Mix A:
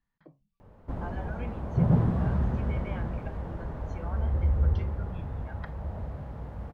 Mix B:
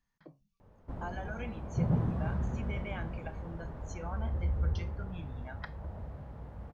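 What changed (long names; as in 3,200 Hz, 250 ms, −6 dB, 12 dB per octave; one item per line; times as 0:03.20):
speech: remove high-frequency loss of the air 200 metres
background −6.5 dB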